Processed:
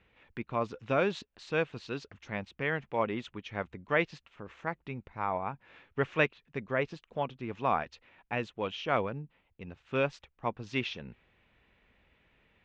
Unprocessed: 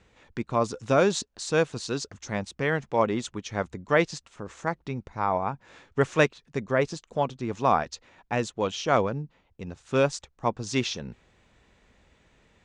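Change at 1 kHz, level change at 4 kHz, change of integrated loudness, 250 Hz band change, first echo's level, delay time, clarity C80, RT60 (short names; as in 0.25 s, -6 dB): -6.5 dB, -7.5 dB, -6.5 dB, -7.5 dB, none, none, none, none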